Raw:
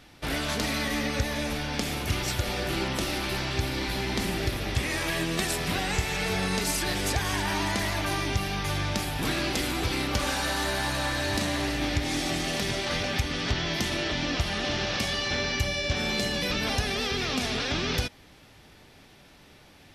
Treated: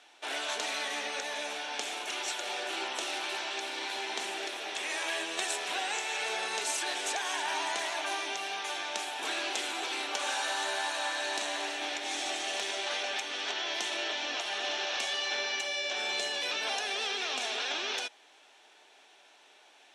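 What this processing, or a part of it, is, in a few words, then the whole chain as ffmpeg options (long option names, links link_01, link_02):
phone speaker on a table: -af "highpass=frequency=470:width=0.5412,highpass=frequency=470:width=1.3066,equalizer=frequency=520:width_type=q:width=4:gain=-9,equalizer=frequency=1200:width_type=q:width=4:gain=-6,equalizer=frequency=2000:width_type=q:width=4:gain=-6,equalizer=frequency=4800:width_type=q:width=4:gain=-9,lowpass=frequency=8700:width=0.5412,lowpass=frequency=8700:width=1.3066"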